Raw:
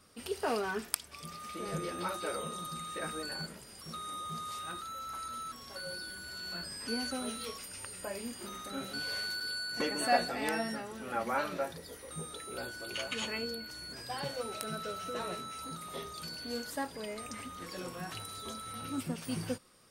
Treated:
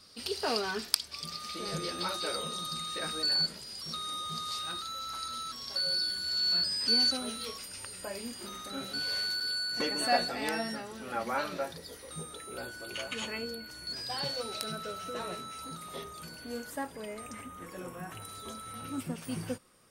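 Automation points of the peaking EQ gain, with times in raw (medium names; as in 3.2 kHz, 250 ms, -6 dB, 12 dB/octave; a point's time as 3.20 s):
peaking EQ 4.5 kHz 0.85 oct
+15 dB
from 7.17 s +5.5 dB
from 12.23 s -1.5 dB
from 13.87 s +9.5 dB
from 14.72 s +1 dB
from 16.04 s -7 dB
from 17.41 s -15 dB
from 18.22 s -3.5 dB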